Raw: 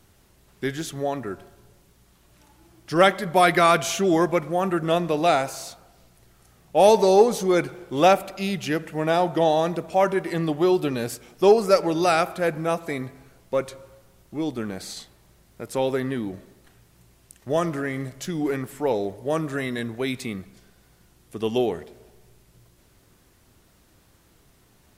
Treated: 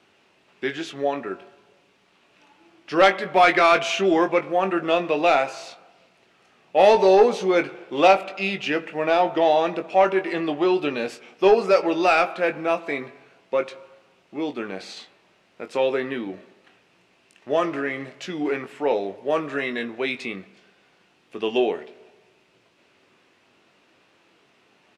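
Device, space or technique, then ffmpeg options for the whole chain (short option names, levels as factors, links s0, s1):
intercom: -filter_complex "[0:a]highpass=300,lowpass=3900,equalizer=f=2600:t=o:w=0.4:g=8,asoftclip=type=tanh:threshold=0.355,asplit=2[s0][s1];[s1]adelay=21,volume=0.398[s2];[s0][s2]amix=inputs=2:normalize=0,volume=1.26"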